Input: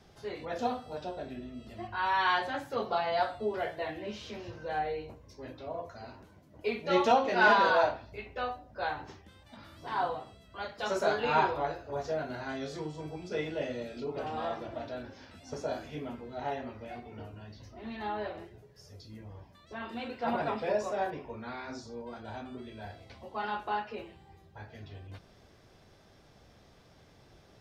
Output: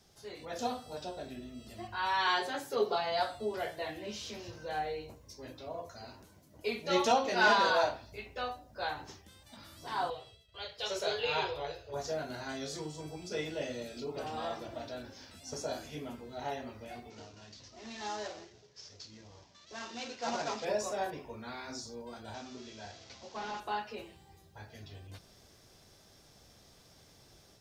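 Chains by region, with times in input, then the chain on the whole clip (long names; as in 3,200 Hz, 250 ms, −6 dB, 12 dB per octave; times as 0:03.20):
0:02.27–0:02.96: high-pass filter 140 Hz + parametric band 410 Hz +15 dB 0.21 octaves
0:10.10–0:11.94: downward expander −52 dBFS + drawn EQ curve 120 Hz 0 dB, 250 Hz −17 dB, 450 Hz +2 dB, 720 Hz −6 dB, 1,300 Hz −7 dB, 3,200 Hz +5 dB, 7,400 Hz −9 dB
0:17.10–0:20.65: variable-slope delta modulation 32 kbit/s + low-shelf EQ 180 Hz −9.5 dB
0:22.34–0:23.60: linear delta modulator 32 kbit/s, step −49 dBFS + low-shelf EQ 100 Hz −9.5 dB
whole clip: bass and treble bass 0 dB, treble +14 dB; automatic gain control gain up to 5 dB; level −8 dB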